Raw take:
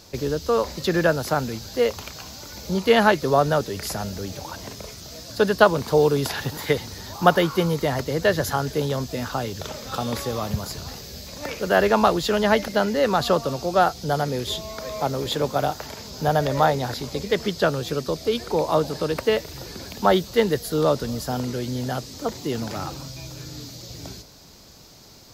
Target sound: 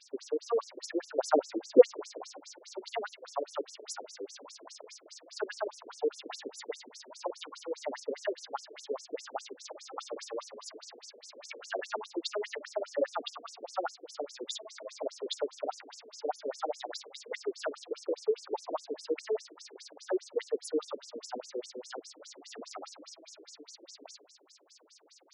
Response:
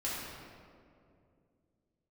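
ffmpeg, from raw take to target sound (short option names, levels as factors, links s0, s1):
-filter_complex "[0:a]alimiter=limit=0.237:level=0:latency=1:release=156,asettb=1/sr,asplit=3[s0][s1][s2];[s0]atrim=end=1.184[s3];[s1]atrim=start=1.18:end=2.4,asetpts=PTS-STARTPTS,afade=t=in:d=0.004:c=qsin,afade=t=out:st=1.216:d=0.004:c=qsin,equalizer=f=370:w=0.39:g=15[s4];[s2]atrim=start=2.396[s5];[s3][s4]acrossfade=d=0.004:c1=hsin:c2=qsin[s6];[s6][s5]acrossfade=d=0.004:c1=qsin:c2=hsin,afftfilt=real='re*between(b*sr/1024,360*pow(7700/360,0.5+0.5*sin(2*PI*4.9*pts/sr))/1.41,360*pow(7700/360,0.5+0.5*sin(2*PI*4.9*pts/sr))*1.41)':imag='im*between(b*sr/1024,360*pow(7700/360,0.5+0.5*sin(2*PI*4.9*pts/sr))/1.41,360*pow(7700/360,0.5+0.5*sin(2*PI*4.9*pts/sr))*1.41)':win_size=1024:overlap=0.75,volume=0.596"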